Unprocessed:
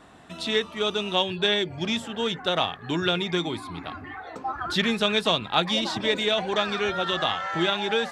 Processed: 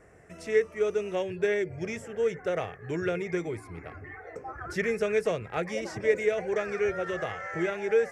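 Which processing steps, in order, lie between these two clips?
FFT filter 120 Hz 0 dB, 260 Hz -13 dB, 450 Hz +4 dB, 950 Hz -15 dB, 2.1 kHz -1 dB, 3.7 kHz -29 dB, 5.5 kHz -6 dB

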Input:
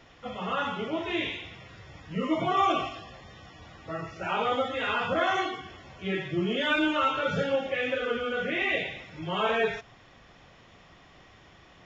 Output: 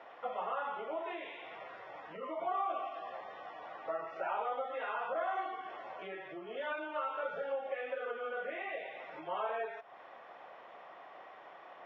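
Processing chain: compression 5:1, threshold -40 dBFS, peak gain reduction 18 dB; ladder band-pass 860 Hz, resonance 30%; trim +16.5 dB

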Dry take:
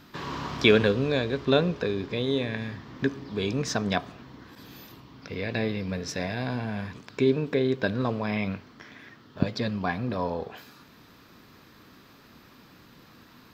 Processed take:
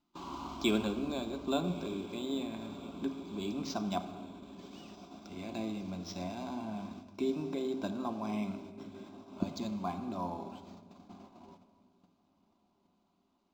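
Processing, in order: static phaser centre 480 Hz, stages 6; on a send: echo that smears into a reverb 1256 ms, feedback 63%, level -15 dB; on the sum: gate -44 dBFS, range -19 dB; simulated room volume 2800 m³, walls mixed, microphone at 0.81 m; decimation joined by straight lines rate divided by 4×; trim -5.5 dB

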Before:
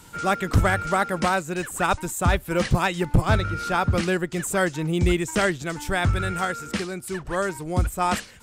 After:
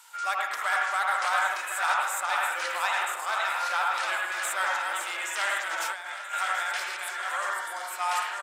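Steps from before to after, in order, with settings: backward echo that repeats 527 ms, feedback 57%, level -5 dB; saturation -13.5 dBFS, distortion -17 dB; high-pass 830 Hz 24 dB/octave; delay 1179 ms -21 dB; reverberation RT60 0.65 s, pre-delay 74 ms, DRR -1 dB; 5.67–6.34 s: compressor with a negative ratio -30 dBFS, ratio -0.5; 7.50–7.91 s: band-stop 2.5 kHz, Q 5.2; trim -3 dB

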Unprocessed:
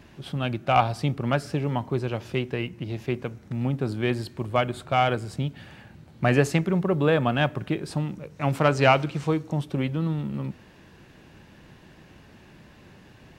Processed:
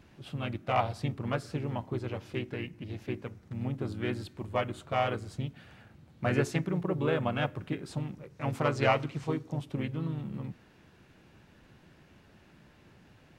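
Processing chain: harmony voices -3 st -4 dB; trim -9 dB

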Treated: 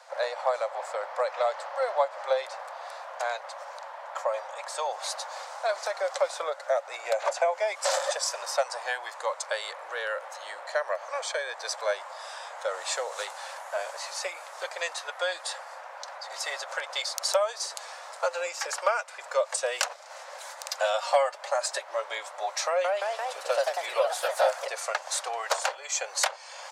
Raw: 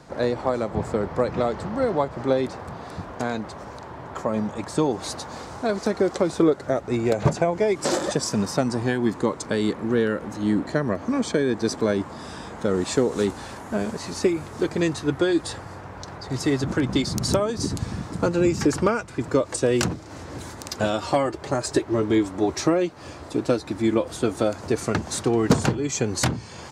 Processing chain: 22.67–24.73 s: ever faster or slower copies 172 ms, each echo +2 st, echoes 3; Chebyshev high-pass 540 Hz, order 6

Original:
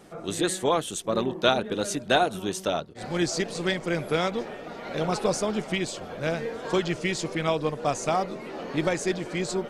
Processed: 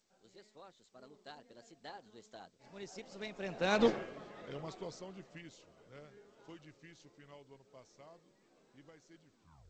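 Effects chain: tape stop on the ending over 0.52 s; Doppler pass-by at 3.85 s, 42 m/s, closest 2.6 m; trim +3 dB; G.722 64 kbps 16 kHz

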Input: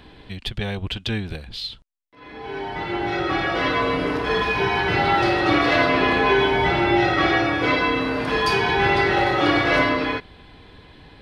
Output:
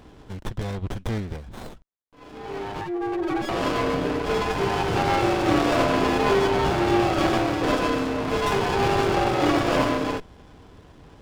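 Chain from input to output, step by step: 2.81–3.49 s: spectral contrast enhancement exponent 2.9; sliding maximum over 17 samples; trim -1 dB

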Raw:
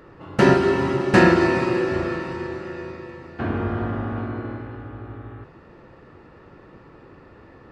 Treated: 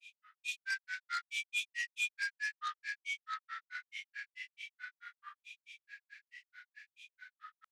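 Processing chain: reverse; compression 20:1, threshold -26 dBFS, peak gain reduction 18 dB; reverse; rippled Chebyshev high-pass 1.7 kHz, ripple 6 dB; echo whose repeats swap between lows and highs 221 ms, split 2.4 kHz, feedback 84%, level -6.5 dB; granulator 134 ms, grains 4.6 per s, pitch spread up and down by 7 st; transformer saturation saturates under 3.4 kHz; trim +9.5 dB

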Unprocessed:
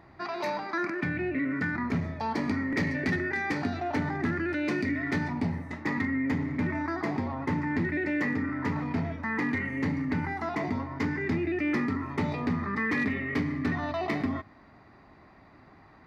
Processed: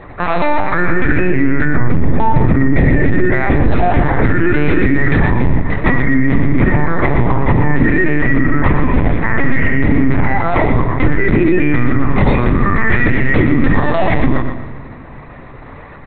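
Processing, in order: octave divider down 1 oct, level -3 dB; LPC vocoder at 8 kHz pitch kept; 1.65–3.71 s: tilt shelf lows +5 dB; feedback delay 119 ms, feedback 32%, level -10 dB; simulated room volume 2500 m³, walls mixed, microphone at 0.35 m; loudness maximiser +20 dB; trim -1 dB

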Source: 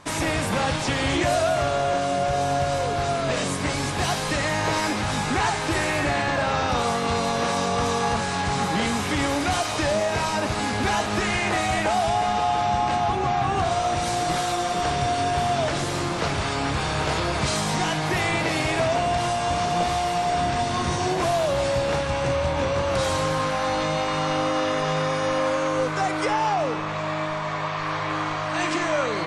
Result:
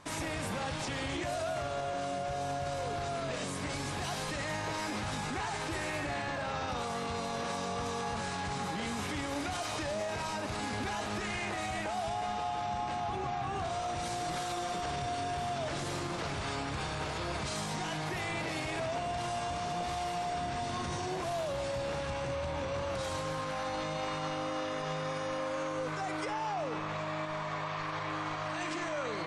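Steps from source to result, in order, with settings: peak limiter -20.5 dBFS, peak gain reduction 8.5 dB; trim -7 dB

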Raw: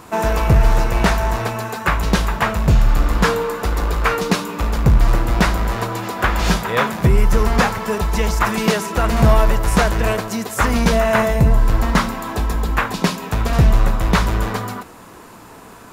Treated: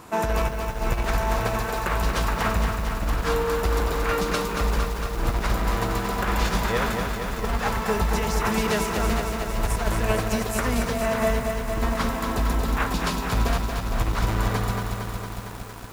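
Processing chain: compressor with a negative ratio -17 dBFS, ratio -0.5; bit-crushed delay 229 ms, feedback 80%, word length 6-bit, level -5.5 dB; trim -7 dB

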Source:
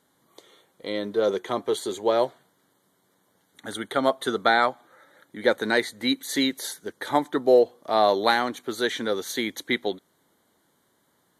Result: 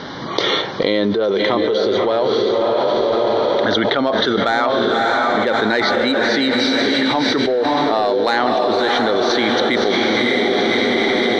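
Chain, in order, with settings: steep low-pass 5.7 kHz 96 dB/octave; saturation -9.5 dBFS, distortion -20 dB; echo that smears into a reverb 590 ms, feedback 47%, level -4 dB; level flattener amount 100%; trim -1.5 dB

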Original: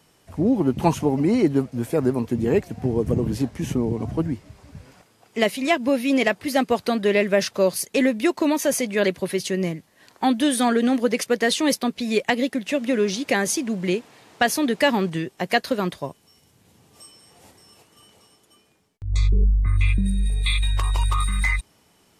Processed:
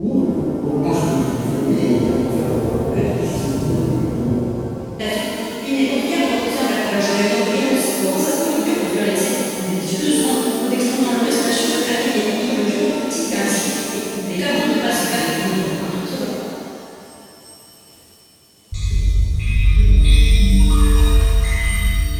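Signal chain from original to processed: slices played last to first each 208 ms, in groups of 3; peaking EQ 950 Hz -8.5 dB 2.8 oct; pitch-shifted reverb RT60 2.3 s, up +7 st, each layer -8 dB, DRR -11.5 dB; trim -4.5 dB

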